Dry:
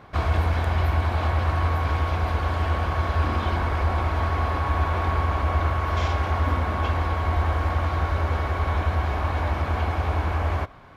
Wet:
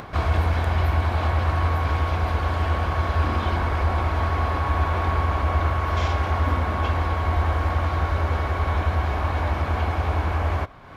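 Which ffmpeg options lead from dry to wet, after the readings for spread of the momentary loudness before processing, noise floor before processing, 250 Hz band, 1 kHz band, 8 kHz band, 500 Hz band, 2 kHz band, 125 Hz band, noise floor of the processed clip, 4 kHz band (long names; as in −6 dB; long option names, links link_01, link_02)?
2 LU, −29 dBFS, +1.0 dB, +1.0 dB, can't be measured, +1.0 dB, +1.0 dB, +1.0 dB, −28 dBFS, +1.0 dB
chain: -af "acompressor=mode=upward:threshold=-31dB:ratio=2.5,volume=1dB"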